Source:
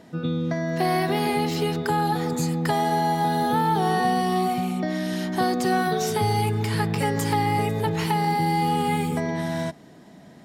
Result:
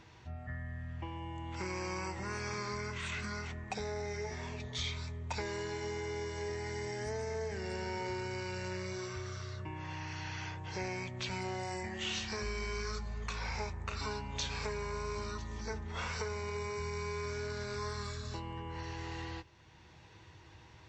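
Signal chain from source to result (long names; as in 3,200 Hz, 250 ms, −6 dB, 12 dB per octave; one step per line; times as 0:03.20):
downward compressor 1.5 to 1, threshold −42 dBFS, peak gain reduction 8.5 dB
guitar amp tone stack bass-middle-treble 5-5-5
wrong playback speed 15 ips tape played at 7.5 ips
level +7.5 dB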